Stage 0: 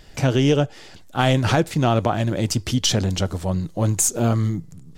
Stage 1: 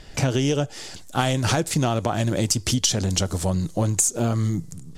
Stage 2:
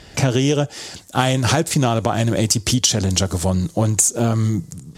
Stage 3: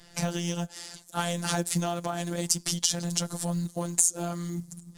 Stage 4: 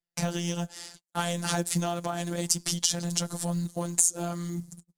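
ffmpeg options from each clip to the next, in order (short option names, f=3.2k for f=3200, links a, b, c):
-filter_complex "[0:a]acrossover=split=5600[a][b];[b]dynaudnorm=f=110:g=5:m=12dB[c];[a][c]amix=inputs=2:normalize=0,lowpass=11k,acompressor=threshold=-21dB:ratio=6,volume=3dB"
-af "highpass=56,volume=4.5dB"
-af "afftfilt=real='hypot(re,im)*cos(PI*b)':imag='0':win_size=1024:overlap=0.75,acrusher=bits=8:mode=log:mix=0:aa=0.000001,equalizer=f=100:t=o:w=0.67:g=-6,equalizer=f=400:t=o:w=0.67:g=-6,equalizer=f=2.5k:t=o:w=0.67:g=-3,equalizer=f=10k:t=o:w=0.67:g=6,volume=-6.5dB"
-af "agate=range=-41dB:threshold=-42dB:ratio=16:detection=peak"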